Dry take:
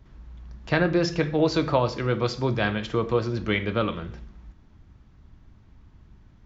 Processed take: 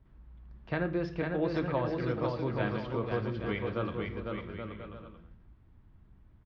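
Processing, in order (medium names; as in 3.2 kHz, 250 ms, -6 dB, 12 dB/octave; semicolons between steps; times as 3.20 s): distance through air 290 m; on a send: bouncing-ball echo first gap 500 ms, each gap 0.65×, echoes 5; on the sum: trim -9 dB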